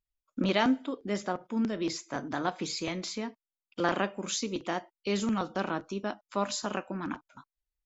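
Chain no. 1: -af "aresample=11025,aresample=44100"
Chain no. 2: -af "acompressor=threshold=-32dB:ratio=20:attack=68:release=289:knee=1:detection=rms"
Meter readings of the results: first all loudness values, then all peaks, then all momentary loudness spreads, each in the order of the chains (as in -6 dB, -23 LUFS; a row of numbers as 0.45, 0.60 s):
-32.5, -36.5 LUFS; -11.5, -17.5 dBFS; 9, 5 LU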